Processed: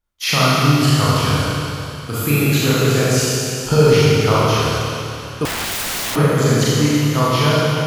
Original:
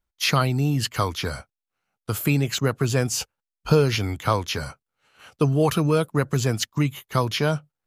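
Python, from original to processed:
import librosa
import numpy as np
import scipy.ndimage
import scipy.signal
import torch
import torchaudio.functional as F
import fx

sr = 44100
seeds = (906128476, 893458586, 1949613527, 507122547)

y = fx.rev_schroeder(x, sr, rt60_s=2.9, comb_ms=27, drr_db=-9.0)
y = fx.overflow_wrap(y, sr, gain_db=17.5, at=(5.45, 6.16))
y = y * librosa.db_to_amplitude(-1.0)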